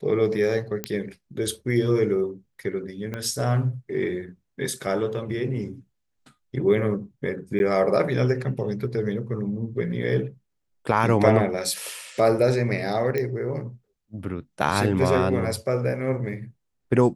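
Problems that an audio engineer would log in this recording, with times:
0.84 pop -10 dBFS
3.14 pop -18 dBFS
7.59–7.6 gap
13.18 pop -14 dBFS

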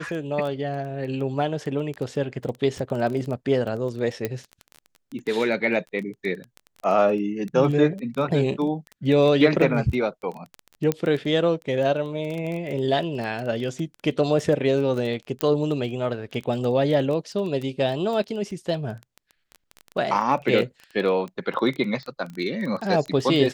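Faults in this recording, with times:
crackle 13/s -28 dBFS
4.25 pop -12 dBFS
10.92 pop -10 dBFS
15.41 pop -8 dBFS

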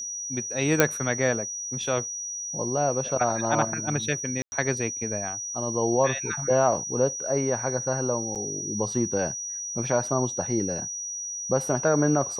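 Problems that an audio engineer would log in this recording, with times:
tone 5800 Hz -31 dBFS
0.8 pop -2 dBFS
4.42–4.52 gap 0.1 s
8.35–8.36 gap 7.2 ms

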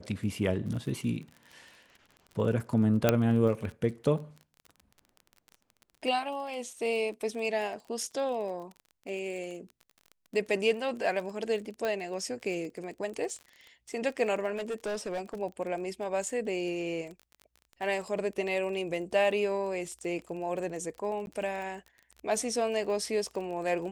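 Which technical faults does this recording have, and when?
crackle 29/s -38 dBFS
3.09 pop -8 dBFS
11.85 pop -19 dBFS
14.55–15.35 clipped -30 dBFS
21.26–21.27 gap 11 ms

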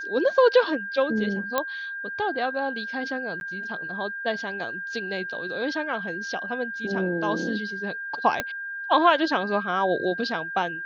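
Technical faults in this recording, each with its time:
tone 1600 Hz -31 dBFS
1.58 pop -9 dBFS
3.4–3.41 gap 11 ms
8.4 pop -10 dBFS

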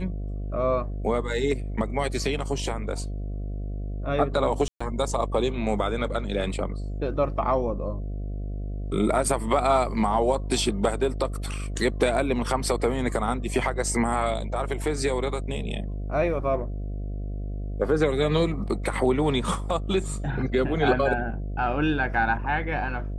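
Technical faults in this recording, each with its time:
buzz 50 Hz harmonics 14 -31 dBFS
4.68–4.8 gap 0.125 s

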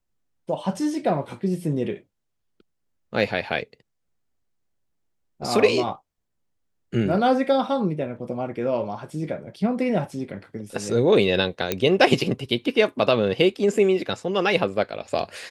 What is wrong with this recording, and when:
11.72 pop -7 dBFS

